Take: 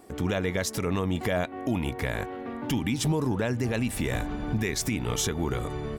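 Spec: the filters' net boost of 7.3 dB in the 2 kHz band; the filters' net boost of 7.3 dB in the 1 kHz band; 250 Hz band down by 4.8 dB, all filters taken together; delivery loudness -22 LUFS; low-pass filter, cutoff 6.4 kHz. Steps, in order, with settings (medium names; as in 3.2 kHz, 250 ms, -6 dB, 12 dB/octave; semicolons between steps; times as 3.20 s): low-pass 6.4 kHz; peaking EQ 250 Hz -7 dB; peaking EQ 1 kHz +8.5 dB; peaking EQ 2 kHz +6.5 dB; trim +5.5 dB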